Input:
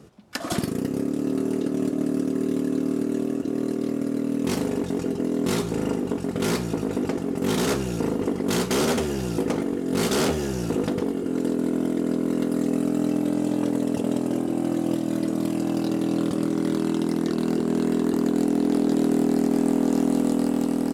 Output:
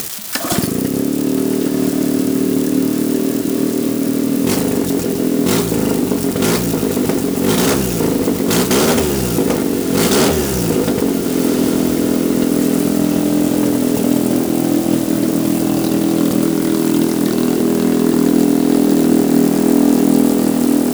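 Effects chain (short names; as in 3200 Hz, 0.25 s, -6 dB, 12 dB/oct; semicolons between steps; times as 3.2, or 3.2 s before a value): switching spikes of -23.5 dBFS; on a send: diffused feedback echo 1.495 s, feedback 70%, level -10.5 dB; on the sum: upward compressor, threshold -25 dBFS; gain +8.5 dB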